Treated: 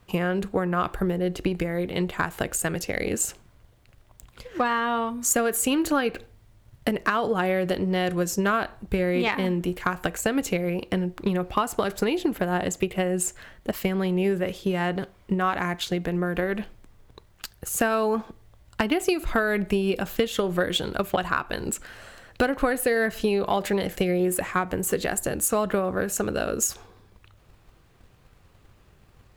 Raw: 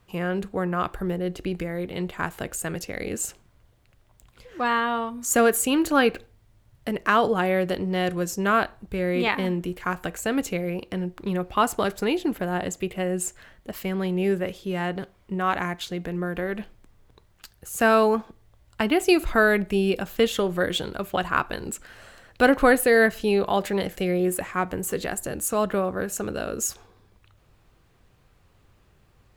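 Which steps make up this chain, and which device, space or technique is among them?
drum-bus smash (transient shaper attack +7 dB, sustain +2 dB; compression 6:1, threshold -21 dBFS, peak gain reduction 13 dB; saturation -11 dBFS, distortion -25 dB); trim +2 dB

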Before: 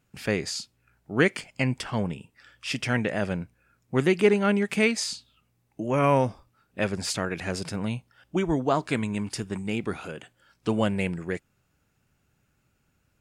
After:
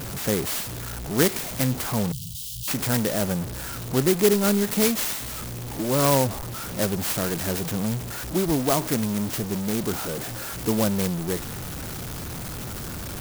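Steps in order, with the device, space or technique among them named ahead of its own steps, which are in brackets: early CD player with a faulty converter (jump at every zero crossing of -27 dBFS; sampling jitter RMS 0.12 ms); 2.12–2.68 s: Chebyshev band-stop 170–3000 Hz, order 5

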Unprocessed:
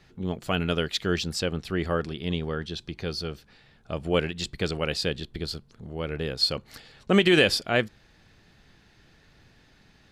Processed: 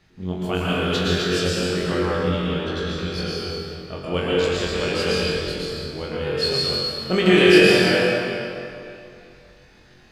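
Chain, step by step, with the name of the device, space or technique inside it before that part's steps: tunnel (flutter echo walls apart 3.8 m, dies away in 0.32 s; reverberation RT60 2.8 s, pre-delay 104 ms, DRR -6.5 dB); trim -3 dB

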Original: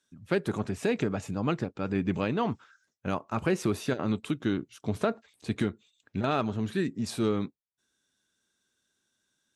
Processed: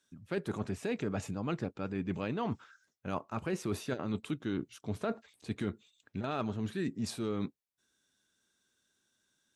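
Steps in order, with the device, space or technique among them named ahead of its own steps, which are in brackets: compression on the reversed sound (reverse; compression, threshold -31 dBFS, peak gain reduction 9.5 dB; reverse)

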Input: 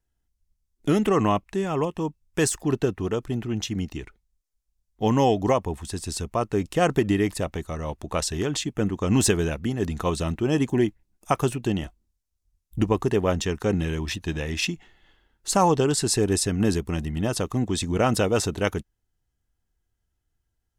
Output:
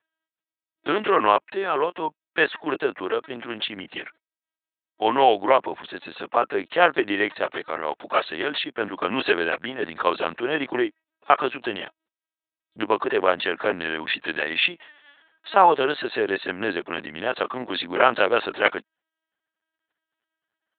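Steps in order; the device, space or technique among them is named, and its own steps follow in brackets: talking toy (LPC vocoder at 8 kHz pitch kept; high-pass 560 Hz 12 dB/octave; peaking EQ 1.6 kHz +5 dB 0.54 oct); trim +7 dB

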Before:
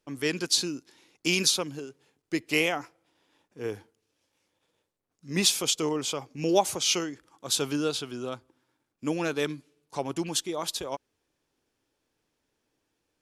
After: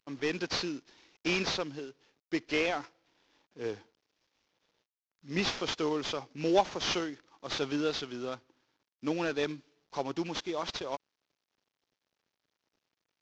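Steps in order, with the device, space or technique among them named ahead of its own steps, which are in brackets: early wireless headset (high-pass 180 Hz 6 dB/octave; CVSD coder 32 kbps); trim -1.5 dB

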